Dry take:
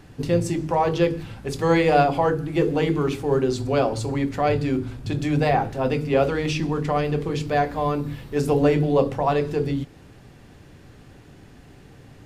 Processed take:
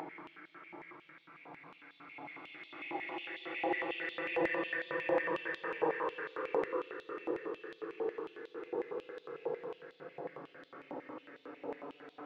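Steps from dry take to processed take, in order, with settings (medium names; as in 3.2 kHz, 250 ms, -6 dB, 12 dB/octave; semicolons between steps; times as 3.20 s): treble shelf 2.3 kHz -12 dB; crossover distortion -50 dBFS; Paulstretch 50×, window 0.05 s, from 2.50 s; tape spacing loss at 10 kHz 39 dB; step-sequenced high-pass 11 Hz 860–3600 Hz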